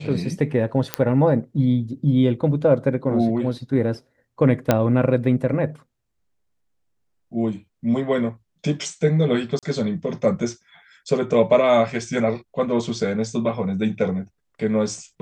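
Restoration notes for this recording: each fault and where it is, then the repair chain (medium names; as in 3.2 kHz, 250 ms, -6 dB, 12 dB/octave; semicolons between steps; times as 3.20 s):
0.94 s: pop -4 dBFS
4.71 s: pop -3 dBFS
9.59–9.63 s: dropout 37 ms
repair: de-click; interpolate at 9.59 s, 37 ms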